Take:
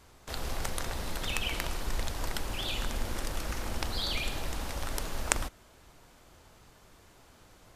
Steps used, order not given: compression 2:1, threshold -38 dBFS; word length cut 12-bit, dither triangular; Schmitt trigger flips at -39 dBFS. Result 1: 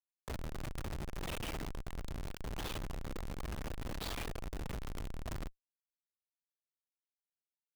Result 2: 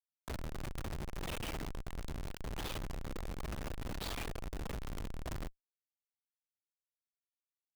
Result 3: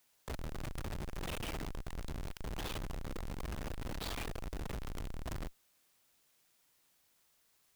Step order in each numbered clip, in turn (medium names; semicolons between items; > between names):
word length cut > compression > Schmitt trigger; compression > word length cut > Schmitt trigger; compression > Schmitt trigger > word length cut